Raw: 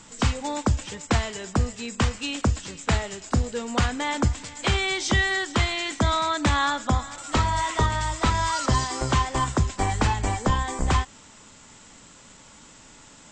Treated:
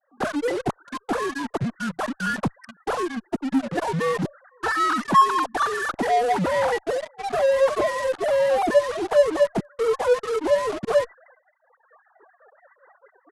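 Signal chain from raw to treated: sine-wave speech; reverb removal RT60 1.6 s; in parallel at -11.5 dB: fuzz box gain 47 dB, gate -39 dBFS; on the sum: expander -50 dBFS; reverse; upward compressor, threshold -35 dBFS; reverse; pitch shift -10 st; gain -1.5 dB

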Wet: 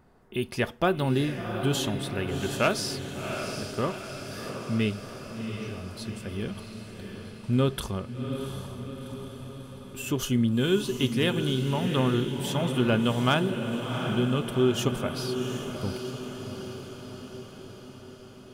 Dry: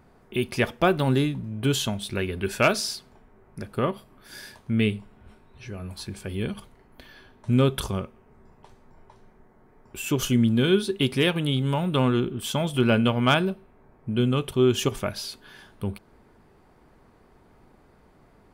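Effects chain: notch 2300 Hz, Q 13; on a send: diffused feedback echo 0.735 s, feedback 61%, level -7 dB; on the sum: gain -3.5 dB

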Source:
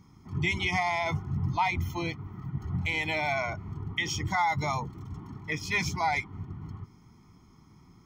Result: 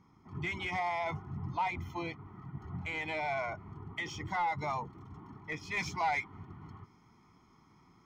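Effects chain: overdrive pedal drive 13 dB, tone 1100 Hz, clips at -15 dBFS, from 5.77 s tone 2200 Hz; gain -6.5 dB

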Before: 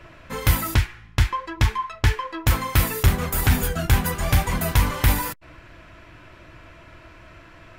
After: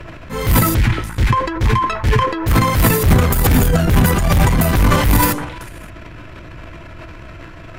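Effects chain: low shelf 360 Hz +7 dB; delay with a stepping band-pass 0.114 s, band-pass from 160 Hz, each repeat 1.4 oct, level -9.5 dB; in parallel at -11 dB: sine folder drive 9 dB, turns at -5.5 dBFS; on the sum: transient shaper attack -6 dB, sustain +10 dB; gain -1 dB

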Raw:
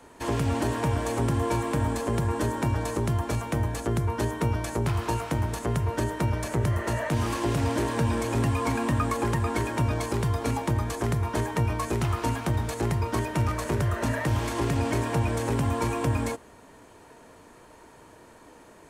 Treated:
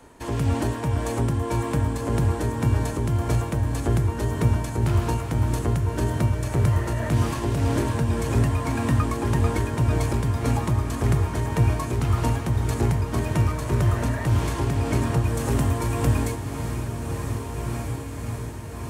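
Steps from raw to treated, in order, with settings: low shelf 190 Hz +7 dB; diffused feedback echo 1.764 s, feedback 60%, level -7 dB; tremolo 1.8 Hz, depth 32%; high shelf 7800 Hz +2.5 dB, from 15.24 s +9.5 dB

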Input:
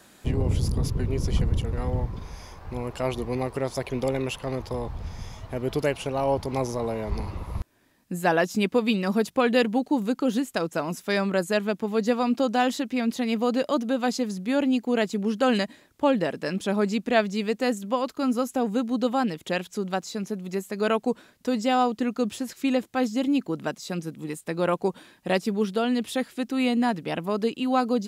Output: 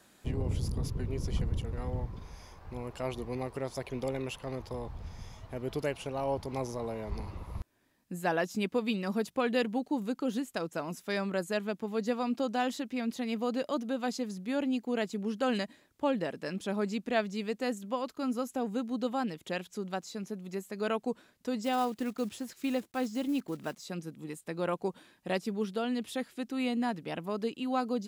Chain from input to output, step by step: 21.64–23.84 block floating point 5-bit; gain -8 dB

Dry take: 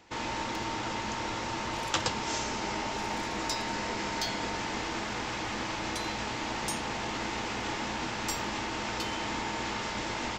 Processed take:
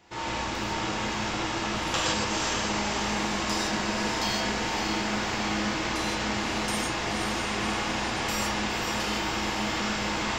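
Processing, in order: on a send: diffused feedback echo 0.527 s, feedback 57%, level -5.5 dB; on the sum: non-linear reverb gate 0.19 s flat, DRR -6 dB; gain -3 dB

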